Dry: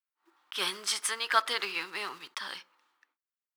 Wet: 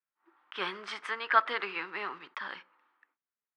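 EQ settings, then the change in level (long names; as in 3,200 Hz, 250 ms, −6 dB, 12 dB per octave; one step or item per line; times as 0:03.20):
Chebyshev band-pass filter 180–1,900 Hz, order 2
+2.0 dB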